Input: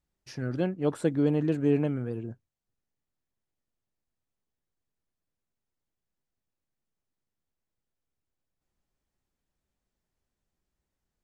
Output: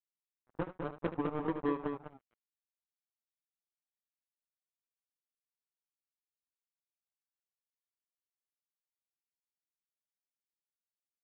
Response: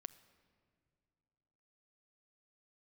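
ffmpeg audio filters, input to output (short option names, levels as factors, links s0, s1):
-af "highpass=f=120:p=1,afftfilt=real='re*gte(hypot(re,im),0.126)':imag='im*gte(hypot(re,im),0.126)':win_size=1024:overlap=0.75,acompressor=threshold=0.0447:ratio=8,flanger=delay=15.5:depth=3.9:speed=0.69,aresample=8000,acrusher=bits=4:mix=0:aa=0.5,aresample=44100,aecho=1:1:75.8|204.1:0.251|0.501"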